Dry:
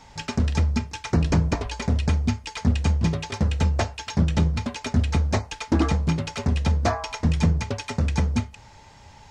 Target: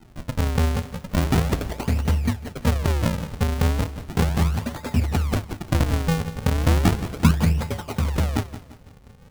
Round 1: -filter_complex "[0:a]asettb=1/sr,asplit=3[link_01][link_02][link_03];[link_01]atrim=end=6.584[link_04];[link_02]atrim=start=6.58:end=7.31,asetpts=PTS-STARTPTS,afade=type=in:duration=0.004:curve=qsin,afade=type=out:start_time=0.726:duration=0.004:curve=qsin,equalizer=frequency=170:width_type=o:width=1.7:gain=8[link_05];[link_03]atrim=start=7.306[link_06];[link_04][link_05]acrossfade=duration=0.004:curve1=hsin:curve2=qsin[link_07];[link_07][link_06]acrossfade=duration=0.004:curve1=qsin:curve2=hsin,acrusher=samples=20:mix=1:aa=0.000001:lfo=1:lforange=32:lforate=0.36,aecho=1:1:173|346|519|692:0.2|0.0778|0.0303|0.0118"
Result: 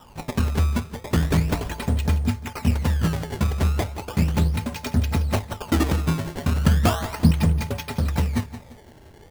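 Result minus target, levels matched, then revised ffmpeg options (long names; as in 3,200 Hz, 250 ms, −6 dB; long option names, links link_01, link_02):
sample-and-hold swept by an LFO: distortion −9 dB
-filter_complex "[0:a]asettb=1/sr,asplit=3[link_01][link_02][link_03];[link_01]atrim=end=6.584[link_04];[link_02]atrim=start=6.58:end=7.31,asetpts=PTS-STARTPTS,afade=type=in:duration=0.004:curve=qsin,afade=type=out:start_time=0.726:duration=0.004:curve=qsin,equalizer=frequency=170:width_type=o:width=1.7:gain=8[link_05];[link_03]atrim=start=7.306[link_06];[link_04][link_05]acrossfade=duration=0.004:curve1=hsin:curve2=qsin[link_07];[link_07][link_06]acrossfade=duration=0.004:curve1=qsin:curve2=hsin,acrusher=samples=76:mix=1:aa=0.000001:lfo=1:lforange=122:lforate=0.36,aecho=1:1:173|346|519|692:0.2|0.0778|0.0303|0.0118"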